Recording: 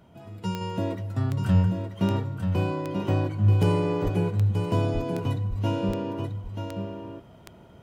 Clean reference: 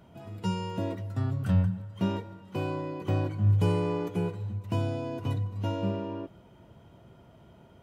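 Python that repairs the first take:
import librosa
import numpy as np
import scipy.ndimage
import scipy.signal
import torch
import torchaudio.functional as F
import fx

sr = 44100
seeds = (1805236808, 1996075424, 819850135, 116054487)

y = fx.fix_declick_ar(x, sr, threshold=10.0)
y = fx.fix_deplosive(y, sr, at_s=(4.03, 4.93, 5.49))
y = fx.fix_echo_inverse(y, sr, delay_ms=935, level_db=-6.5)
y = fx.gain(y, sr, db=fx.steps((0.0, 0.0), (0.61, -3.5)))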